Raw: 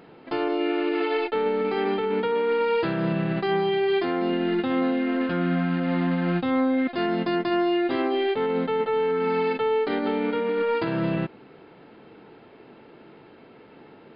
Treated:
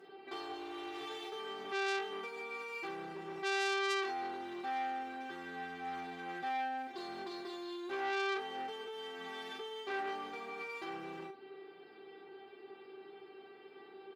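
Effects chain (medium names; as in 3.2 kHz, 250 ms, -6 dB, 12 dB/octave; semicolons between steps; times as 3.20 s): doubling 42 ms -6 dB; one-sided clip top -35.5 dBFS; compression 3:1, threshold -31 dBFS, peak gain reduction 8 dB; high-pass 170 Hz 12 dB/octave; feedback comb 390 Hz, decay 0.2 s, harmonics all, mix 100%; transformer saturation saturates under 3.2 kHz; trim +9 dB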